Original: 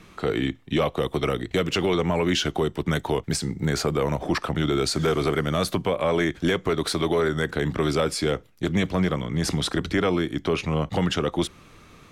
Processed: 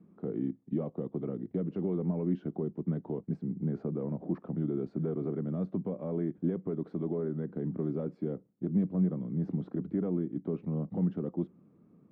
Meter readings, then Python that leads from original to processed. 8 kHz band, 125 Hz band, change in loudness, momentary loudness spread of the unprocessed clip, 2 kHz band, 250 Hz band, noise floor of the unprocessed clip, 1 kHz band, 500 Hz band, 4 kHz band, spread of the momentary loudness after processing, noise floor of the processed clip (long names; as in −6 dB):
below −40 dB, −7.0 dB, −9.5 dB, 4 LU, below −30 dB, −6.0 dB, −51 dBFS, −22.5 dB, −12.0 dB, below −40 dB, 5 LU, −63 dBFS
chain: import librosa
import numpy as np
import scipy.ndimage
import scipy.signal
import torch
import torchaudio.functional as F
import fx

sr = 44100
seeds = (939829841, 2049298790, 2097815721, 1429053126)

y = fx.ladder_bandpass(x, sr, hz=230.0, resonance_pct=45)
y = y * librosa.db_to_amplitude(3.0)